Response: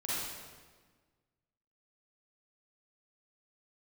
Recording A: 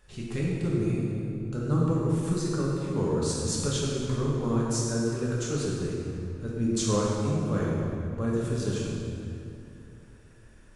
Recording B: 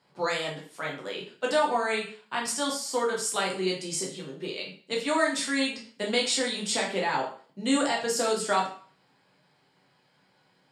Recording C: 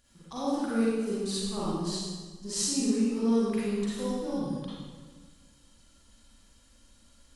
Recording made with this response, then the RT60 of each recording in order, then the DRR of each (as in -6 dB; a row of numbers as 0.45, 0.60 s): C; 2.7, 0.45, 1.5 s; -5.0, -2.5, -9.0 dB